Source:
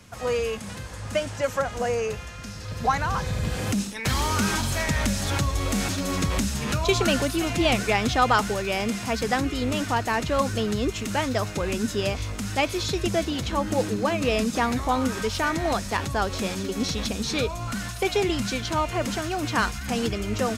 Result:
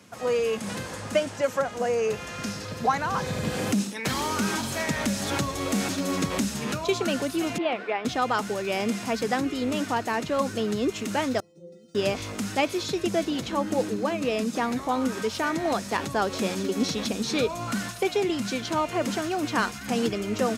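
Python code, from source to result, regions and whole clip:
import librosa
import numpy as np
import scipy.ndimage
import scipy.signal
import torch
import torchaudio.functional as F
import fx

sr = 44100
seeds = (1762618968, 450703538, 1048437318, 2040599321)

y = fx.chain(x, sr, fx.highpass(hz=430.0, slope=12),
    fx.air_absorb(metres=410.0), at=(7.58, 8.05))
y = fx.chain(y, sr, fx.cheby1_bandstop(low_hz=500.0, high_hz=9200.0, order=3),
    fx.stiff_resonator(f0_hz=170.0, decay_s=0.74, stiffness=0.002),
    fx.resample_linear(factor=3), at=(11.4, 11.95))
y = scipy.signal.sosfilt(scipy.signal.butter(2, 230.0, 'highpass', fs=sr, output='sos'), y)
y = fx.low_shelf(y, sr, hz=450.0, db=7.5)
y = fx.rider(y, sr, range_db=10, speed_s=0.5)
y = y * 10.0 ** (-3.0 / 20.0)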